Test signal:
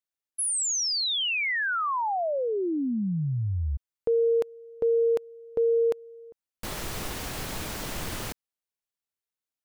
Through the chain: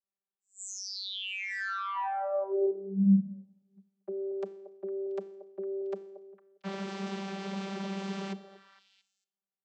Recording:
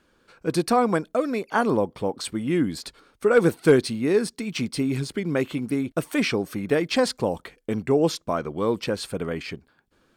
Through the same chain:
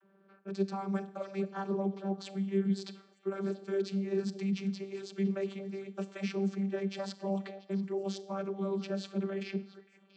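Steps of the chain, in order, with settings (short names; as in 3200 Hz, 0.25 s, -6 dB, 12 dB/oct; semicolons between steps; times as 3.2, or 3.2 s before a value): low-pass opened by the level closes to 1600 Hz, open at -22.5 dBFS; high shelf 3400 Hz +10.5 dB; reverse; compressor 6:1, threshold -30 dBFS; reverse; Schroeder reverb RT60 0.74 s, combs from 28 ms, DRR 15 dB; vocoder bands 32, saw 195 Hz; on a send: delay with a stepping band-pass 0.228 s, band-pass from 550 Hz, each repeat 1.4 oct, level -10.5 dB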